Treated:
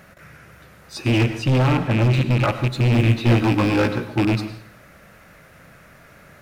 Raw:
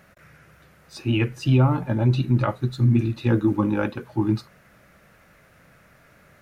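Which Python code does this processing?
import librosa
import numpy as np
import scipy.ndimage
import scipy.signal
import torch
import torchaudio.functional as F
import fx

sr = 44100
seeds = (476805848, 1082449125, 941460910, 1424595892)

y = fx.rattle_buzz(x, sr, strikes_db=-24.0, level_db=-21.0)
y = fx.high_shelf(y, sr, hz=4700.0, db=-5.5, at=(1.12, 2.44))
y = np.clip(10.0 ** (21.0 / 20.0) * y, -1.0, 1.0) / 10.0 ** (21.0 / 20.0)
y = fx.doubler(y, sr, ms=17.0, db=-6.0, at=(2.97, 4.08))
y = fx.rev_plate(y, sr, seeds[0], rt60_s=0.57, hf_ratio=1.0, predelay_ms=85, drr_db=10.5)
y = y * 10.0 ** (6.5 / 20.0)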